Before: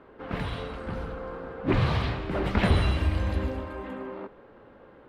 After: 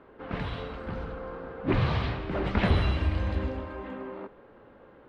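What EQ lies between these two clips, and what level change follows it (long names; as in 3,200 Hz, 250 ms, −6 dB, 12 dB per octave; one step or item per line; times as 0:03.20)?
low-pass filter 5,200 Hz 12 dB per octave
−1.5 dB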